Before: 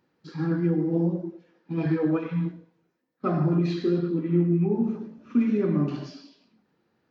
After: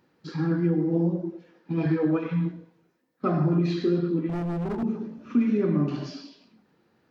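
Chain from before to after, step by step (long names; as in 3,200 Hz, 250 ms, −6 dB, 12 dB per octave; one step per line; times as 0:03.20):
in parallel at +2 dB: downward compressor, threshold −34 dBFS, peak gain reduction 16 dB
0:04.29–0:04.83: on the sum: hard clipping −25 dBFS, distortion −11 dB
level −2 dB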